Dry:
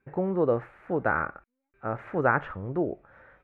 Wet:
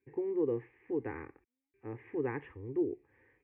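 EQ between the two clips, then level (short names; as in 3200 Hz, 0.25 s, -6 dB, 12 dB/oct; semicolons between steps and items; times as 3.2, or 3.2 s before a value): BPF 100–2100 Hz; band shelf 900 Hz -13.5 dB; fixed phaser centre 930 Hz, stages 8; -2.0 dB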